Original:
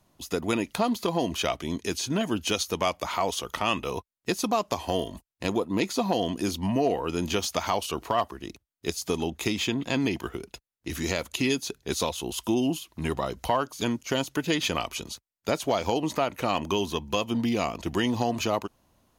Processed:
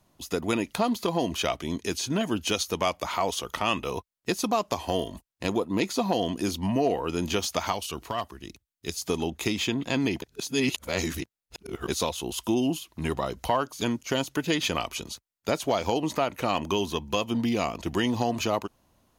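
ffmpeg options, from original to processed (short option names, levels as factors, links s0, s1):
-filter_complex "[0:a]asettb=1/sr,asplit=3[s0][s1][s2];[s0]atrim=end=7.724[s3];[s1]atrim=start=7.72:end=8.93,asetpts=PTS-STARTPTS,afade=t=in:d=0.004:c=qsin,afade=t=out:st=1.206:d=0.004:c=qsin,equalizer=f=640:w=0.41:g=-6.5[s4];[s2]atrim=start=8.926[s5];[s3][s4]acrossfade=d=0.004:c1=hsin:c2=qsin[s6];[s6][s5]acrossfade=d=0.004:c1=qsin:c2=hsin,asplit=3[s7][s8][s9];[s7]atrim=end=10.222[s10];[s8]atrim=start=10.218:end=11.882,asetpts=PTS-STARTPTS,areverse[s11];[s9]atrim=start=11.878[s12];[s10][s11]acrossfade=d=0.004:c1=hsin:c2=hsin[s13];[s13][s12]acrossfade=d=0.004:c1=hsin:c2=hsin"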